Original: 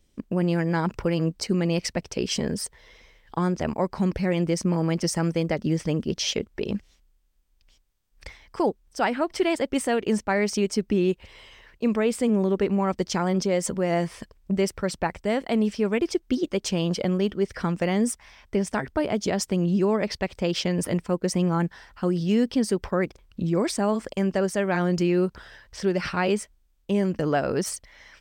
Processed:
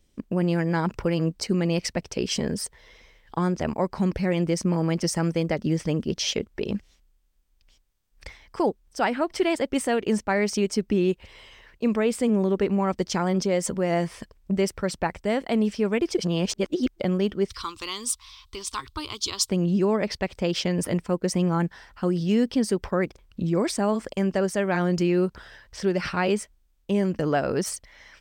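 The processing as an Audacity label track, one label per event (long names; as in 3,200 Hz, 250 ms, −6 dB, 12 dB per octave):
16.180000	17.000000	reverse
17.500000	19.490000	drawn EQ curve 110 Hz 0 dB, 170 Hz −29 dB, 320 Hz −8 dB, 670 Hz −25 dB, 1,100 Hz +7 dB, 1,700 Hz −13 dB, 2,500 Hz 0 dB, 3,900 Hz +14 dB, 5,600 Hz +5 dB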